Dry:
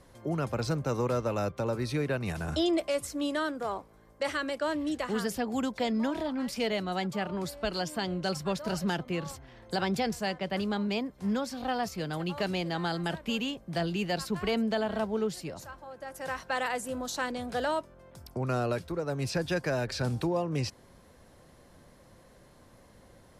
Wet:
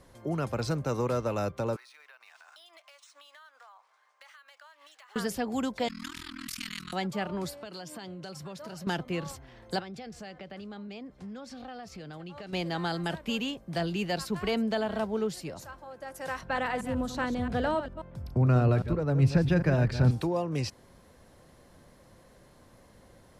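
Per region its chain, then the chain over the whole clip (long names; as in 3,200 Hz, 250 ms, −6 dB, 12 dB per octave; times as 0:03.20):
0:01.76–0:05.16: high-pass filter 910 Hz 24 dB per octave + downward compressor 10 to 1, threshold −50 dBFS + linearly interpolated sample-rate reduction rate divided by 3×
0:05.88–0:06.93: Chebyshev band-stop filter 270–1,200 Hz, order 4 + amplitude modulation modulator 41 Hz, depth 95% + every bin compressed towards the loudest bin 2 to 1
0:07.53–0:08.87: high-pass filter 83 Hz 24 dB per octave + downward compressor 5 to 1, threshold −39 dBFS
0:09.79–0:12.53: downward compressor 5 to 1, threshold −40 dBFS + high-frequency loss of the air 53 metres + notch filter 980 Hz, Q 9.7
0:16.41–0:20.11: delay that plays each chunk backwards 134 ms, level −9.5 dB + bass and treble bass +12 dB, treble −10 dB
whole clip: no processing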